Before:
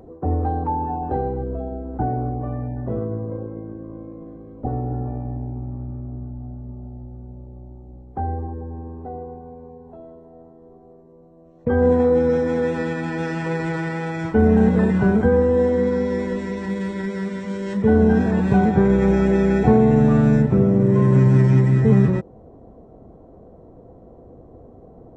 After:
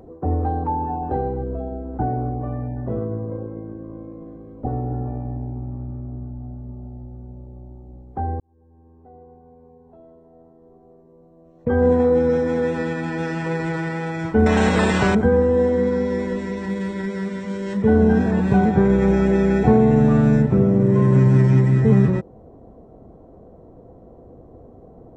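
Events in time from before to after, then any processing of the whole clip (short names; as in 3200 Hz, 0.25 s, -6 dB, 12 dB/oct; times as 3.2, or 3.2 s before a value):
8.4–11.81 fade in
14.46–15.15 spectral compressor 2:1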